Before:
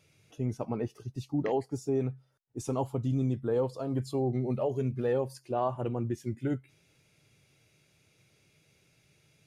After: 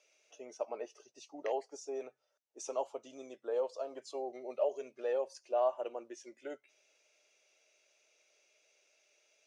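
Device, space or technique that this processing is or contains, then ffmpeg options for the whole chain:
phone speaker on a table: -af "highpass=f=430:w=0.5412,highpass=f=430:w=1.3066,equalizer=f=610:t=q:w=4:g=9,equalizer=f=2700:t=q:w=4:g=5,equalizer=f=6000:t=q:w=4:g=10,lowpass=f=8100:w=0.5412,lowpass=f=8100:w=1.3066,volume=0.501"

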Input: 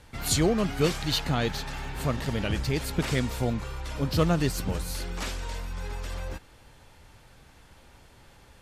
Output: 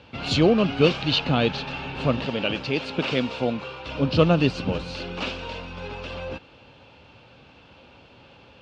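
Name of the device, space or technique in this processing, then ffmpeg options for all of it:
guitar cabinet: -filter_complex "[0:a]asettb=1/sr,asplit=3[s0][s1][s2];[s0]atrim=end=2.264[s3];[s1]atrim=start=2.26:end=3.86,asetpts=PTS-STARTPTS,afade=t=in:d=0.004:c=qsin,afade=t=out:st=1.596:d=0.004:c=qsin,highpass=f=290:p=1[s4];[s2]atrim=start=3.856[s5];[s3][s4]acrossfade=d=0.004:c1=hsin:c2=qsin[s6];[s6][s5]acrossfade=d=0.004:c1=qsin:c2=hsin,highpass=100,equalizer=f=260:t=q:w=4:g=4,equalizer=f=530:t=q:w=4:g=5,equalizer=f=1900:t=q:w=4:g=-9,equalizer=f=2700:t=q:w=4:g=9,lowpass=f=4400:w=0.5412,lowpass=f=4400:w=1.3066,volume=1.68"

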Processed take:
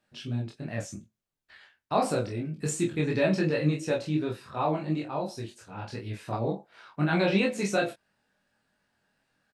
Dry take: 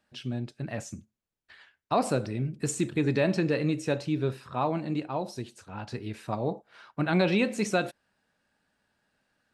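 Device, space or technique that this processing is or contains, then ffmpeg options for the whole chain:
double-tracked vocal: -filter_complex "[0:a]asplit=2[s0][s1];[s1]adelay=26,volume=0.708[s2];[s0][s2]amix=inputs=2:normalize=0,flanger=delay=17.5:depth=3.7:speed=2.8,volume=1.19"

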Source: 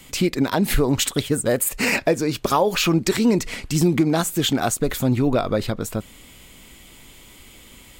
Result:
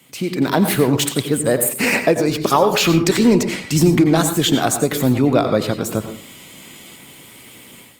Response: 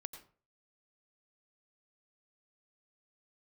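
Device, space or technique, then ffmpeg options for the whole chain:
far-field microphone of a smart speaker: -filter_complex "[1:a]atrim=start_sample=2205[s0];[0:a][s0]afir=irnorm=-1:irlink=0,highpass=f=110:w=0.5412,highpass=f=110:w=1.3066,dynaudnorm=f=260:g=3:m=3.55" -ar 48000 -c:a libopus -b:a 32k

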